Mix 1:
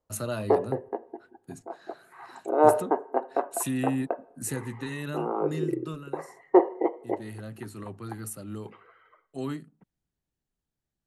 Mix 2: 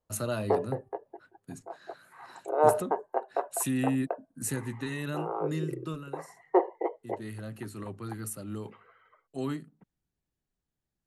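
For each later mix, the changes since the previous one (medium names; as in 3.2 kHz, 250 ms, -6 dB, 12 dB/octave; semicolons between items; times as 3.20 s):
background: add high-pass 390 Hz 24 dB/octave; reverb: off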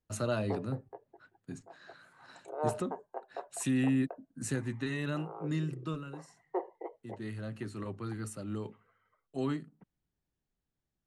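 background -11.5 dB; master: add Bessel low-pass 6.4 kHz, order 8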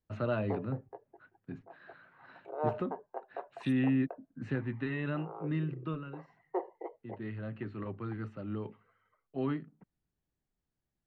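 first voice: add low-pass 2.9 kHz 24 dB/octave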